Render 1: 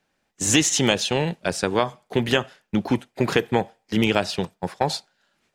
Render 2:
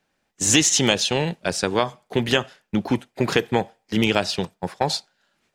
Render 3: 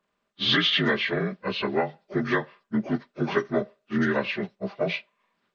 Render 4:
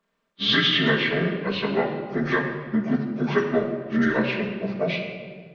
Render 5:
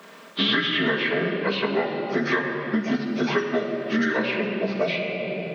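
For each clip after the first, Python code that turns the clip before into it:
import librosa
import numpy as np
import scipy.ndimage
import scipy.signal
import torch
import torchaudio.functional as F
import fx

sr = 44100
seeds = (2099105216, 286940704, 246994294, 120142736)

y1 = fx.dynamic_eq(x, sr, hz=5100.0, q=0.86, threshold_db=-37.0, ratio=4.0, max_db=4)
y2 = fx.partial_stretch(y1, sr, pct=79)
y2 = y2 + 0.34 * np.pad(y2, (int(5.0 * sr / 1000.0), 0))[:len(y2)]
y2 = y2 * 10.0 ** (-3.5 / 20.0)
y3 = fx.room_shoebox(y2, sr, seeds[0], volume_m3=2400.0, walls='mixed', distance_m=1.6)
y4 = scipy.signal.sosfilt(scipy.signal.butter(2, 220.0, 'highpass', fs=sr, output='sos'), y3)
y4 = fx.band_squash(y4, sr, depth_pct=100)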